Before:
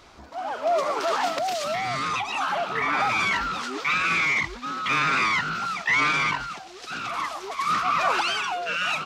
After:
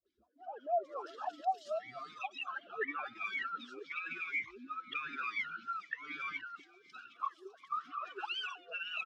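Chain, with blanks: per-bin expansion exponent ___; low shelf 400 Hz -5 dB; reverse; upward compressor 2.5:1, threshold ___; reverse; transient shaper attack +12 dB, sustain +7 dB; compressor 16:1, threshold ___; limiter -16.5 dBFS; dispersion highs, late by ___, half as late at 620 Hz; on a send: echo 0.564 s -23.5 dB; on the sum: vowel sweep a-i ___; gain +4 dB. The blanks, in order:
2, -45 dBFS, -27 dBFS, 62 ms, 4 Hz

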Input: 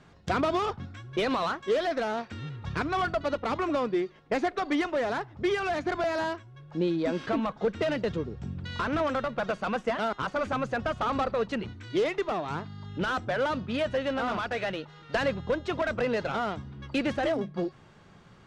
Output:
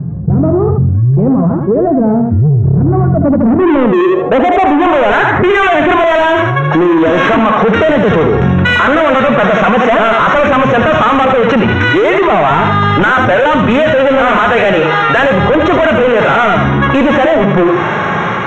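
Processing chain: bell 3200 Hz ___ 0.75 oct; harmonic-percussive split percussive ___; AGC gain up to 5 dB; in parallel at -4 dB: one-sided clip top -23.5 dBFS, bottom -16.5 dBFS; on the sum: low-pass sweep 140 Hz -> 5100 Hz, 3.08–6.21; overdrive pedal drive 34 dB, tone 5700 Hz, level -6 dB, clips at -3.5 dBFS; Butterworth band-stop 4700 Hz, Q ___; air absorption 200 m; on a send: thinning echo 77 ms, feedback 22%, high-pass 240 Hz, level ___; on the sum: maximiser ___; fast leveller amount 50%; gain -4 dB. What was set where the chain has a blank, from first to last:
-8.5 dB, -10 dB, 1.6, -6 dB, +11.5 dB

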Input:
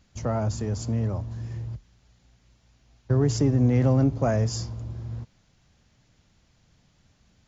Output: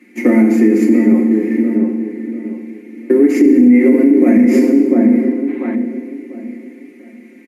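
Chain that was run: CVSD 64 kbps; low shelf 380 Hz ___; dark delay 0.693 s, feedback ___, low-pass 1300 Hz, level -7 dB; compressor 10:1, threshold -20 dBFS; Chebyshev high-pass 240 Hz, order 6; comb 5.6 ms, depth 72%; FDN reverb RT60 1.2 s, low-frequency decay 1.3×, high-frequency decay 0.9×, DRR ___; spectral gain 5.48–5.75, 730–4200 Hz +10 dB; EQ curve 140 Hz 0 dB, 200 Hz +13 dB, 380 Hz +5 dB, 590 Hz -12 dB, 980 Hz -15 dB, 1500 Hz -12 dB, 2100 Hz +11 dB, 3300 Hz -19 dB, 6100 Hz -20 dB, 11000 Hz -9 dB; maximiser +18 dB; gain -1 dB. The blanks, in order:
+3.5 dB, 33%, 2 dB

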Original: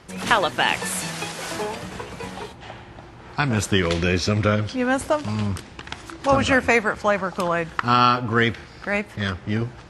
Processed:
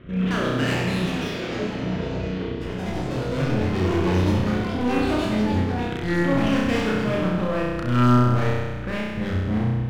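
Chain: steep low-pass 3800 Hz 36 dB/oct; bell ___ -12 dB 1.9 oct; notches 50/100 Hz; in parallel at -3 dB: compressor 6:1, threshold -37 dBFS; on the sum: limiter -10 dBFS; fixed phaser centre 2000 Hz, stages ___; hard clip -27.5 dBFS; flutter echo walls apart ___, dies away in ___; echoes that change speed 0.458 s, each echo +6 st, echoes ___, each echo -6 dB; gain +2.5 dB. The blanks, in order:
2000 Hz, 4, 5.6 m, 1.4 s, 2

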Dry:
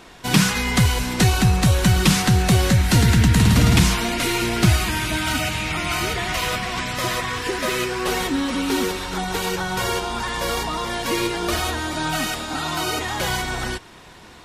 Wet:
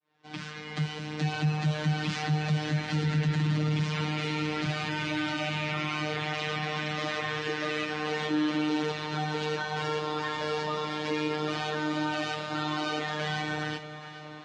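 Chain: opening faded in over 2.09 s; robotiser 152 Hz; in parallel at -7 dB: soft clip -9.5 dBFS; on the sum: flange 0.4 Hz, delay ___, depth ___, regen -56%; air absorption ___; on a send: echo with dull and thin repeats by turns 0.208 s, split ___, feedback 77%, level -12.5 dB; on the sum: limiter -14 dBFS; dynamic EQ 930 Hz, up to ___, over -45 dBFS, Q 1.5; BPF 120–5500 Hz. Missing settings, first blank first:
1.7 ms, 5.3 ms, 100 m, 830 Hz, -4 dB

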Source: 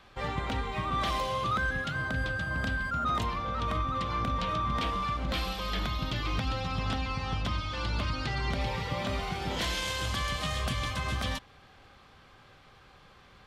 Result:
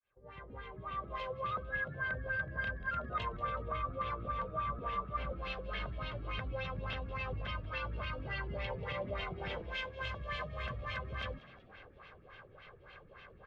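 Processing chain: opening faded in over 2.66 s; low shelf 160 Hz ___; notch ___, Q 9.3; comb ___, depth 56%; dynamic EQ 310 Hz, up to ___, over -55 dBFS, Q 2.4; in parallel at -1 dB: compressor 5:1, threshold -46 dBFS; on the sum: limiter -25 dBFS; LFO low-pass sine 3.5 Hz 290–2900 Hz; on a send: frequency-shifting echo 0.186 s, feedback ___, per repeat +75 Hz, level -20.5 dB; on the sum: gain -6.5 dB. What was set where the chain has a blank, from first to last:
-4.5 dB, 1000 Hz, 1.9 ms, -3 dB, 49%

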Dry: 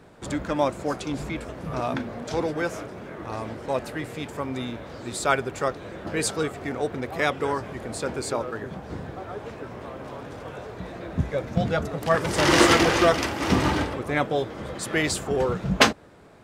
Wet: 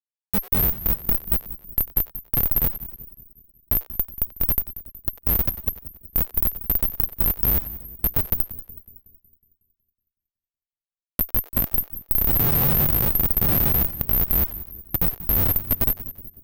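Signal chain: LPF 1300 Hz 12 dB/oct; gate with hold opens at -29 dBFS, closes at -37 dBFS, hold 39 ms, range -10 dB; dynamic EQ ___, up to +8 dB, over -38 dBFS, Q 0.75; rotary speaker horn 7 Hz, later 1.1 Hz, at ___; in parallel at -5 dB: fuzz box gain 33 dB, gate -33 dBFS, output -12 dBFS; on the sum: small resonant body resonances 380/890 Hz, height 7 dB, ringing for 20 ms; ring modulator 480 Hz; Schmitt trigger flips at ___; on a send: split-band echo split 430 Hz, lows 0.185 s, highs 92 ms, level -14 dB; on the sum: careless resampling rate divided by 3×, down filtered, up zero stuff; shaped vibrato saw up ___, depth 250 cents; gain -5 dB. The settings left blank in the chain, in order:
240 Hz, 2.04, -9.5 dBFS, 5.1 Hz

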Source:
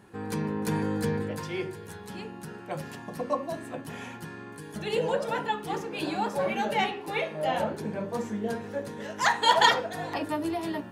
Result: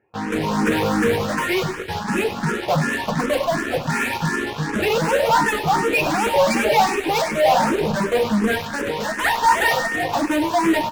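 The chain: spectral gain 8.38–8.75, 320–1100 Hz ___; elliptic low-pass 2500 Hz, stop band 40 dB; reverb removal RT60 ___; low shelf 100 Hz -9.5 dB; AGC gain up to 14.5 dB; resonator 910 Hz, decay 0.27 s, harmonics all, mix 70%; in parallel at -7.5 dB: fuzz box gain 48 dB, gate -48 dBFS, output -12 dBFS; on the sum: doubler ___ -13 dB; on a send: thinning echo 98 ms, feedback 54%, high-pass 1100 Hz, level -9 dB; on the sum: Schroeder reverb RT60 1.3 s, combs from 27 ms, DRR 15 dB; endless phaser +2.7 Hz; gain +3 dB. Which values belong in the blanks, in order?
-6 dB, 1.6 s, 13 ms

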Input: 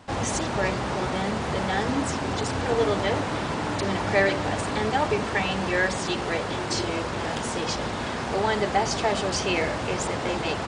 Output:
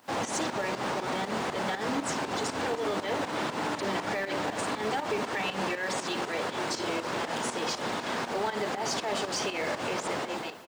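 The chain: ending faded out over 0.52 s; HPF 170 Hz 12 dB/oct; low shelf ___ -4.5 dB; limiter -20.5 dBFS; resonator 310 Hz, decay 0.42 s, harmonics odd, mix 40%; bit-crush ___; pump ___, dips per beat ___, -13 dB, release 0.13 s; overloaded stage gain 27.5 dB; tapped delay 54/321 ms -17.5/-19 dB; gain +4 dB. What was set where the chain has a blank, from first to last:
230 Hz, 10-bit, 120 bpm, 2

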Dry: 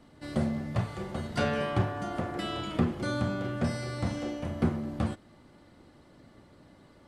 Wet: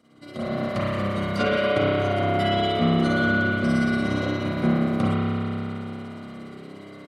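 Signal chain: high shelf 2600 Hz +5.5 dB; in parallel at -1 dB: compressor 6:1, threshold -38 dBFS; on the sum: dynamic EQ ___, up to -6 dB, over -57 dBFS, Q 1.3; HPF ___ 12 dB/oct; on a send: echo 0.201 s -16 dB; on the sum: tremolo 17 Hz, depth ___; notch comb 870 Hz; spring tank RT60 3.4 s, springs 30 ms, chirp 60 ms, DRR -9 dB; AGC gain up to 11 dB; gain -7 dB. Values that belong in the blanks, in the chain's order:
8100 Hz, 97 Hz, 72%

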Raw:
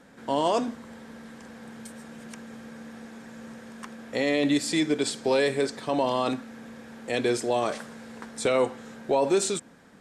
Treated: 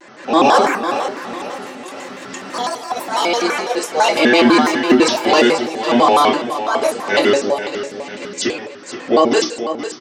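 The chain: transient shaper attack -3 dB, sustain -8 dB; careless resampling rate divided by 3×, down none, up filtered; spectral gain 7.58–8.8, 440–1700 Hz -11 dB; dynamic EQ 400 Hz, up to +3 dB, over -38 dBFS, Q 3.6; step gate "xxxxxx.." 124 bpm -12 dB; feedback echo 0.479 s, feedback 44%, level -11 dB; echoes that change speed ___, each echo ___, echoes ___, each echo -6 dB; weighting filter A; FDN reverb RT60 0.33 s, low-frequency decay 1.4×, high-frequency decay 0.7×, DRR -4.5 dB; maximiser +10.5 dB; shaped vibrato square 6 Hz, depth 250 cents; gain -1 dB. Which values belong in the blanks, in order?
0.229 s, +6 st, 2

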